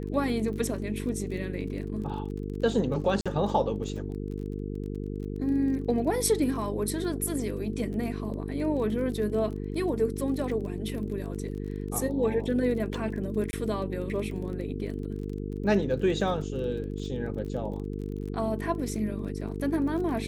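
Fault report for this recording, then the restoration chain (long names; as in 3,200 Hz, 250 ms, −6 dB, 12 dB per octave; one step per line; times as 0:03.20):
mains buzz 50 Hz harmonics 9 −34 dBFS
surface crackle 26 per second −37 dBFS
0:03.21–0:03.26: drop-out 46 ms
0:13.51–0:13.53: drop-out 20 ms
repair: click removal
hum removal 50 Hz, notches 9
repair the gap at 0:03.21, 46 ms
repair the gap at 0:13.51, 20 ms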